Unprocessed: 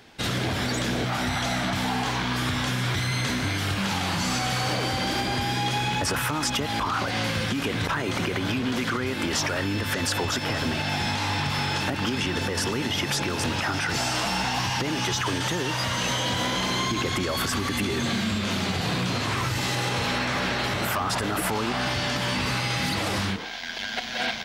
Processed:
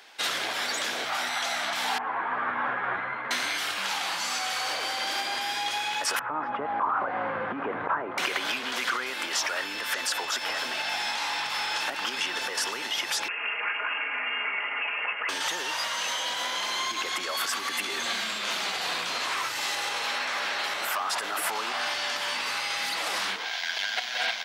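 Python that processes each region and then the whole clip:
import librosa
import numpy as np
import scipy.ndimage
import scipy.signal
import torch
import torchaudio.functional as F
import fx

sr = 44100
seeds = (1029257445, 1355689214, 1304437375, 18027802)

y = fx.chain(x, sr, fx.lowpass(hz=1600.0, slope=24),
    fx.ensemble(), at=(1.98, 3.31))
y = fx.chain(y, sr, fx.ladder_lowpass(hz=1700.0, resonance_pct=20),
    fx.tilt_eq(slope=-2.5), at=(6.19, 8.18))
y = fx.chain(y, sr, fx.lower_of_two(delay_ms=5.1),
    fx.highpass(hz=170.0, slope=24),
    fx.freq_invert(carrier_hz=3000), at=(13.28, 15.29))
y = scipy.signal.sosfilt(scipy.signal.butter(2, 740.0, 'highpass', fs=sr, output='sos'), y)
y = fx.rider(y, sr, range_db=10, speed_s=0.5)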